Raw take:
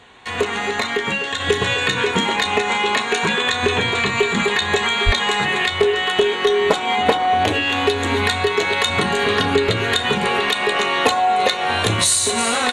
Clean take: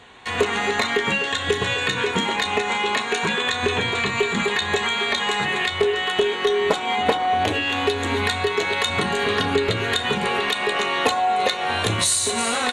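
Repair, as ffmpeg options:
ffmpeg -i in.wav -filter_complex "[0:a]asplit=3[link_01][link_02][link_03];[link_01]afade=type=out:start_time=5.05:duration=0.02[link_04];[link_02]highpass=frequency=140:width=0.5412,highpass=frequency=140:width=1.3066,afade=type=in:start_time=5.05:duration=0.02,afade=type=out:start_time=5.17:duration=0.02[link_05];[link_03]afade=type=in:start_time=5.17:duration=0.02[link_06];[link_04][link_05][link_06]amix=inputs=3:normalize=0,asetnsamples=nb_out_samples=441:pad=0,asendcmd='1.4 volume volume -3.5dB',volume=0dB" out.wav

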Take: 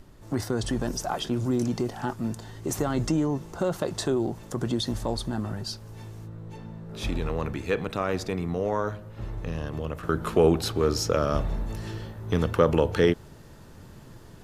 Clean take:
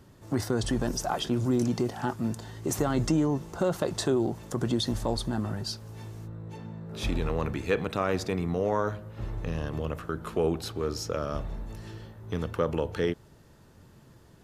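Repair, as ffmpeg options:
ffmpeg -i in.wav -af "agate=range=-21dB:threshold=-37dB,asetnsamples=nb_out_samples=441:pad=0,asendcmd='10.03 volume volume -7dB',volume=0dB" out.wav

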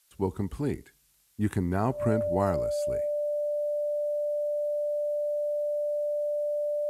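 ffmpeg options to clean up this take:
ffmpeg -i in.wav -af "adeclick=threshold=4,bandreject=frequency=590:width=30,agate=range=-21dB:threshold=-48dB" out.wav

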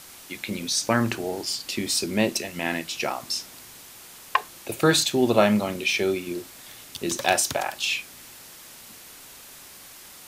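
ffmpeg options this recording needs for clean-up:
ffmpeg -i in.wav -af "afwtdn=0.0063" out.wav

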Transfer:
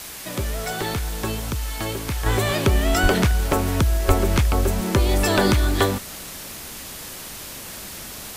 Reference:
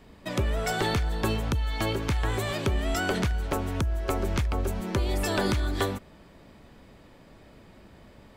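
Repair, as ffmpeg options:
ffmpeg -i in.wav -filter_complex "[0:a]asplit=3[link_01][link_02][link_03];[link_01]afade=type=out:start_time=3.02:duration=0.02[link_04];[link_02]highpass=frequency=140:width=0.5412,highpass=frequency=140:width=1.3066,afade=type=in:start_time=3.02:duration=0.02,afade=type=out:start_time=3.14:duration=0.02[link_05];[link_03]afade=type=in:start_time=3.14:duration=0.02[link_06];[link_04][link_05][link_06]amix=inputs=3:normalize=0,asplit=3[link_07][link_08][link_09];[link_07]afade=type=out:start_time=4.07:duration=0.02[link_10];[link_08]highpass=frequency=140:width=0.5412,highpass=frequency=140:width=1.3066,afade=type=in:start_time=4.07:duration=0.02,afade=type=out:start_time=4.19:duration=0.02[link_11];[link_09]afade=type=in:start_time=4.19:duration=0.02[link_12];[link_10][link_11][link_12]amix=inputs=3:normalize=0,afwtdn=0.018,asetnsamples=nb_out_samples=441:pad=0,asendcmd='2.26 volume volume -8dB',volume=0dB" out.wav

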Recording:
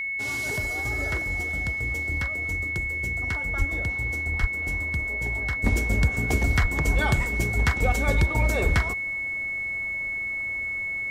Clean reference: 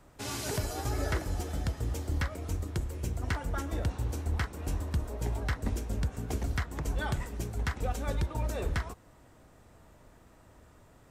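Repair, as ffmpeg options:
ffmpeg -i in.wav -filter_complex "[0:a]bandreject=frequency=2200:width=30,asplit=3[link_01][link_02][link_03];[link_01]afade=type=out:start_time=3.58:duration=0.02[link_04];[link_02]highpass=frequency=140:width=0.5412,highpass=frequency=140:width=1.3066,afade=type=in:start_time=3.58:duration=0.02,afade=type=out:start_time=3.7:duration=0.02[link_05];[link_03]afade=type=in:start_time=3.7:duration=0.02[link_06];[link_04][link_05][link_06]amix=inputs=3:normalize=0,asplit=3[link_07][link_08][link_09];[link_07]afade=type=out:start_time=4.4:duration=0.02[link_10];[link_08]highpass=frequency=140:width=0.5412,highpass=frequency=140:width=1.3066,afade=type=in:start_time=4.4:duration=0.02,afade=type=out:start_time=4.52:duration=0.02[link_11];[link_09]afade=type=in:start_time=4.52:duration=0.02[link_12];[link_10][link_11][link_12]amix=inputs=3:normalize=0,asplit=3[link_13][link_14][link_15];[link_13]afade=type=out:start_time=6.61:duration=0.02[link_16];[link_14]highpass=frequency=140:width=0.5412,highpass=frequency=140:width=1.3066,afade=type=in:start_time=6.61:duration=0.02,afade=type=out:start_time=6.73:duration=0.02[link_17];[link_15]afade=type=in:start_time=6.73:duration=0.02[link_18];[link_16][link_17][link_18]amix=inputs=3:normalize=0,asetnsamples=nb_out_samples=441:pad=0,asendcmd='5.64 volume volume -9dB',volume=0dB" out.wav

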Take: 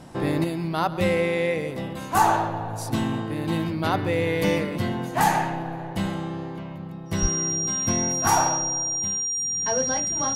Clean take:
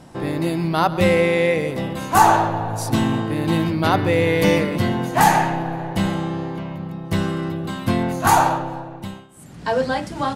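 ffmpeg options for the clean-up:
ffmpeg -i in.wav -filter_complex "[0:a]bandreject=frequency=5700:width=30,asplit=3[link_01][link_02][link_03];[link_01]afade=type=out:start_time=7.21:duration=0.02[link_04];[link_02]highpass=frequency=140:width=0.5412,highpass=frequency=140:width=1.3066,afade=type=in:start_time=7.21:duration=0.02,afade=type=out:start_time=7.33:duration=0.02[link_05];[link_03]afade=type=in:start_time=7.33:duration=0.02[link_06];[link_04][link_05][link_06]amix=inputs=3:normalize=0,asetnsamples=nb_out_samples=441:pad=0,asendcmd='0.44 volume volume 6dB',volume=0dB" out.wav

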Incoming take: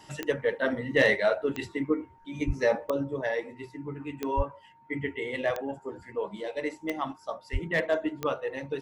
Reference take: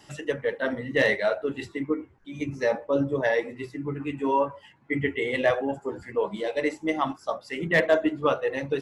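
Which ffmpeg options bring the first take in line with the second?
ffmpeg -i in.wav -filter_complex "[0:a]adeclick=threshold=4,bandreject=frequency=920:width=30,asplit=3[link_01][link_02][link_03];[link_01]afade=type=out:start_time=2.46:duration=0.02[link_04];[link_02]highpass=frequency=140:width=0.5412,highpass=frequency=140:width=1.3066,afade=type=in:start_time=2.46:duration=0.02,afade=type=out:start_time=2.58:duration=0.02[link_05];[link_03]afade=type=in:start_time=2.58:duration=0.02[link_06];[link_04][link_05][link_06]amix=inputs=3:normalize=0,asplit=3[link_07][link_08][link_09];[link_07]afade=type=out:start_time=4.36:duration=0.02[link_10];[link_08]highpass=frequency=140:width=0.5412,highpass=frequency=140:width=1.3066,afade=type=in:start_time=4.36:duration=0.02,afade=type=out:start_time=4.48:duration=0.02[link_11];[link_09]afade=type=in:start_time=4.48:duration=0.02[link_12];[link_10][link_11][link_12]amix=inputs=3:normalize=0,asplit=3[link_13][link_14][link_15];[link_13]afade=type=out:start_time=7.52:duration=0.02[link_16];[link_14]highpass=frequency=140:width=0.5412,highpass=frequency=140:width=1.3066,afade=type=in:start_time=7.52:duration=0.02,afade=type=out:start_time=7.64:duration=0.02[link_17];[link_15]afade=type=in:start_time=7.64:duration=0.02[link_18];[link_16][link_17][link_18]amix=inputs=3:normalize=0,asetnsamples=nb_out_samples=441:pad=0,asendcmd='2.91 volume volume 6dB',volume=0dB" out.wav

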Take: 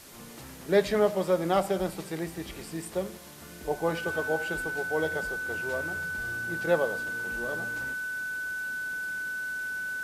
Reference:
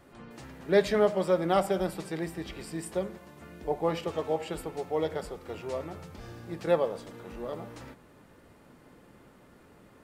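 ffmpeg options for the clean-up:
ffmpeg -i in.wav -af "bandreject=frequency=1500:width=30,afwtdn=0.0035" out.wav

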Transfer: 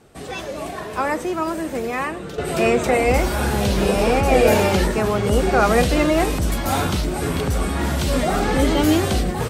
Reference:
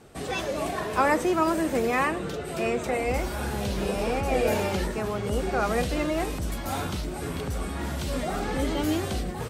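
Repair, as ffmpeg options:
ffmpeg -i in.wav -af "asetnsamples=nb_out_samples=441:pad=0,asendcmd='2.38 volume volume -9.5dB',volume=0dB" out.wav

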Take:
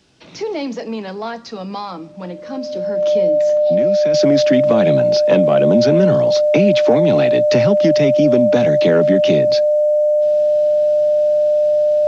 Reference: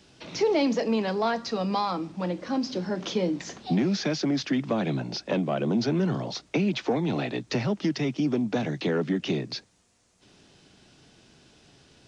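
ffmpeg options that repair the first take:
ffmpeg -i in.wav -af "bandreject=frequency=600:width=30,asetnsamples=nb_out_samples=441:pad=0,asendcmd='4.14 volume volume -9.5dB',volume=0dB" out.wav

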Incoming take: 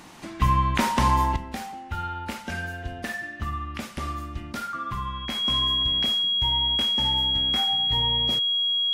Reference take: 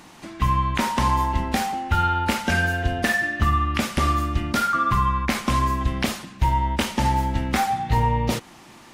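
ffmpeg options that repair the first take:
ffmpeg -i in.wav -af "bandreject=frequency=3300:width=30,asetnsamples=nb_out_samples=441:pad=0,asendcmd='1.36 volume volume 10.5dB',volume=0dB" out.wav

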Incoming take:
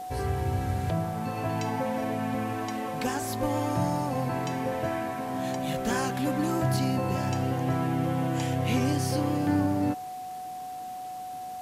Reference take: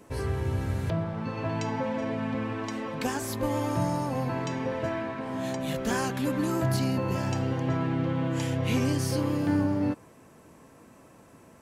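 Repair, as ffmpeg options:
ffmpeg -i in.wav -af "bandreject=frequency=740:width=30,afwtdn=0.0025" out.wav

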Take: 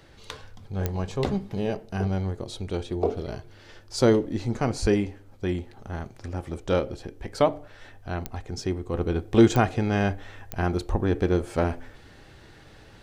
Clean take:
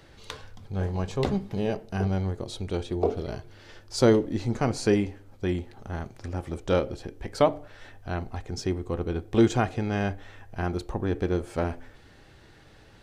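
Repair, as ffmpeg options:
ffmpeg -i in.wav -filter_complex "[0:a]adeclick=threshold=4,asplit=3[link_01][link_02][link_03];[link_01]afade=type=out:start_time=4.81:duration=0.02[link_04];[link_02]highpass=frequency=140:width=0.5412,highpass=frequency=140:width=1.3066,afade=type=in:start_time=4.81:duration=0.02,afade=type=out:start_time=4.93:duration=0.02[link_05];[link_03]afade=type=in:start_time=4.93:duration=0.02[link_06];[link_04][link_05][link_06]amix=inputs=3:normalize=0,asplit=3[link_07][link_08][link_09];[link_07]afade=type=out:start_time=10.9:duration=0.02[link_10];[link_08]highpass=frequency=140:width=0.5412,highpass=frequency=140:width=1.3066,afade=type=in:start_time=10.9:duration=0.02,afade=type=out:start_time=11.02:duration=0.02[link_11];[link_09]afade=type=in:start_time=11.02:duration=0.02[link_12];[link_10][link_11][link_12]amix=inputs=3:normalize=0,asetnsamples=nb_out_samples=441:pad=0,asendcmd='8.94 volume volume -3.5dB',volume=0dB" out.wav

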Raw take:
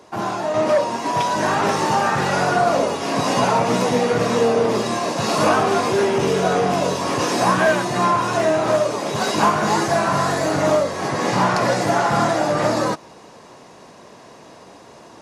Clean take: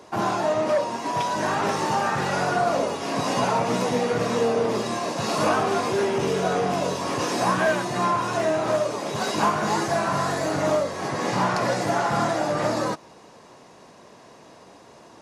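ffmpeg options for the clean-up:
ffmpeg -i in.wav -af "asetnsamples=nb_out_samples=441:pad=0,asendcmd='0.54 volume volume -5dB',volume=0dB" out.wav

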